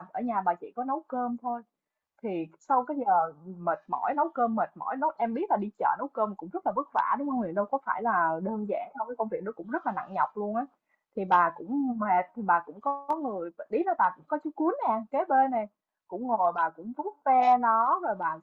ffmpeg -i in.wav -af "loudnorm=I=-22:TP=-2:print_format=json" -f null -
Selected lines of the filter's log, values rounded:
"input_i" : "-28.4",
"input_tp" : "-10.9",
"input_lra" : "3.9",
"input_thresh" : "-38.6",